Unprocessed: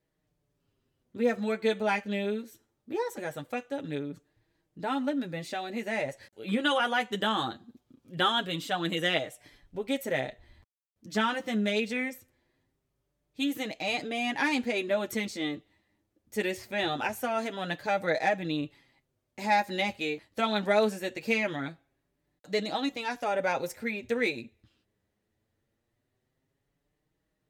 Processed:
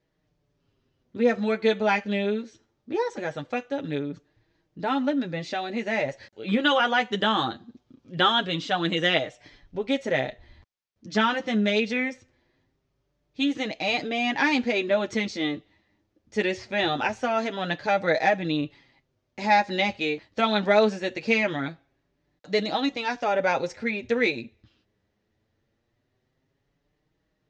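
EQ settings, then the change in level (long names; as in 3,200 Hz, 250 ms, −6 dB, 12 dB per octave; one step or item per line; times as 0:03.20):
Butterworth low-pass 6,300 Hz 36 dB per octave
+5.0 dB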